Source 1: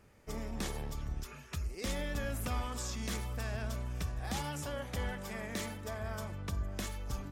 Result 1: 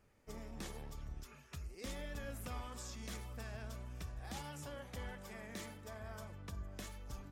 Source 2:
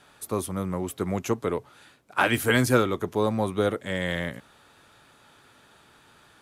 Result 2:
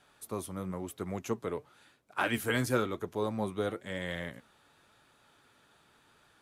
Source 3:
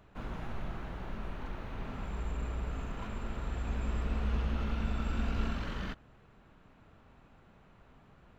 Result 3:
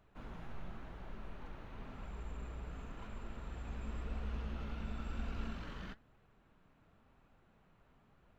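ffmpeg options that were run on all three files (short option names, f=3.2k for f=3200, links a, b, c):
-af "flanger=delay=1.2:depth=6.1:regen=78:speed=0.96:shape=triangular,volume=-4dB"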